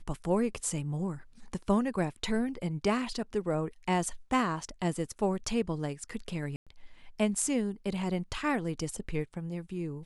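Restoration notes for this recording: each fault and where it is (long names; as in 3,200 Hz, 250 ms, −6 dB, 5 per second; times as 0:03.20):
0:06.56–0:06.67: drop-out 106 ms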